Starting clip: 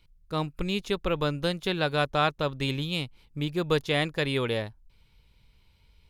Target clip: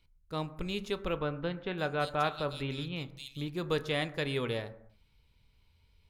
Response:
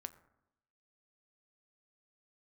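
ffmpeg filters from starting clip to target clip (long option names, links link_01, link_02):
-filter_complex "[0:a]asettb=1/sr,asplit=3[link_01][link_02][link_03];[link_01]atrim=end=1.164[link_04];[link_02]atrim=start=1.16:end=3.48,asetpts=PTS-STARTPTS,afade=type=in:duration=0.004:curve=qsin,afade=type=out:start_time=2.316:duration=0.004:curve=qsin,acrossover=split=3200[link_05][link_06];[link_06]adelay=570[link_07];[link_05][link_07]amix=inputs=2:normalize=0,atrim=end_sample=102312[link_08];[link_03]atrim=start=3.476[link_09];[link_04][link_08]acrossfade=duration=0.004:curve1=hsin:curve2=qsin[link_10];[link_10][link_09]acrossfade=duration=0.004:curve1=qsin:curve2=hsin[link_11];[1:a]atrim=start_sample=2205,afade=type=out:start_time=0.38:duration=0.01,atrim=end_sample=17199[link_12];[link_11][link_12]afir=irnorm=-1:irlink=0,volume=-1.5dB"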